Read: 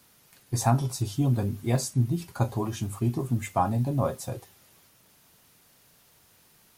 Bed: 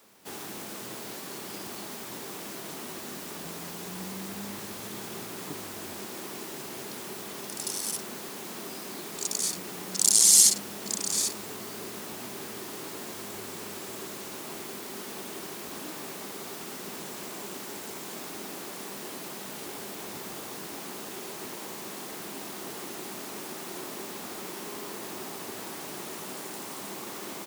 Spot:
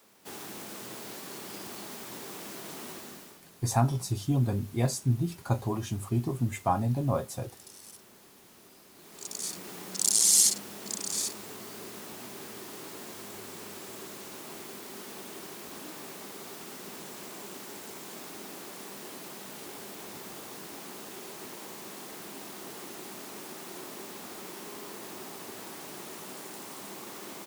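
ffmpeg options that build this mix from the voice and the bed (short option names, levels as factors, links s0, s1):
-filter_complex "[0:a]adelay=3100,volume=0.794[s0];[1:a]volume=3.55,afade=t=out:st=2.89:d=0.52:silence=0.177828,afade=t=in:st=8.94:d=0.73:silence=0.211349[s1];[s0][s1]amix=inputs=2:normalize=0"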